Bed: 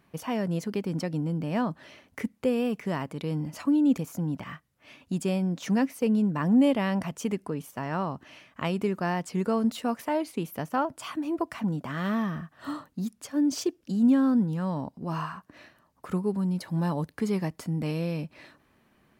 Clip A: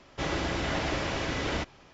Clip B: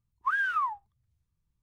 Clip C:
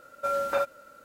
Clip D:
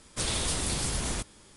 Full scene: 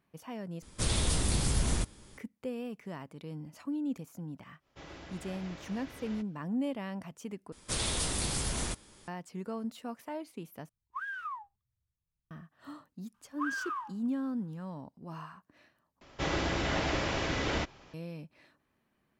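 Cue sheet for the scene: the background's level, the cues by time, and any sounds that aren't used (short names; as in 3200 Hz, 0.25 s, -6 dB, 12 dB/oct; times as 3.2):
bed -12 dB
0.62 replace with D -3 dB + low shelf 260 Hz +8.5 dB
4.58 add A -18 dB, fades 0.10 s
7.52 replace with D -2.5 dB
10.69 replace with B -11 dB
13.14 add B -10 dB + per-bin compression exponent 0.6
16.01 replace with A -1 dB
not used: C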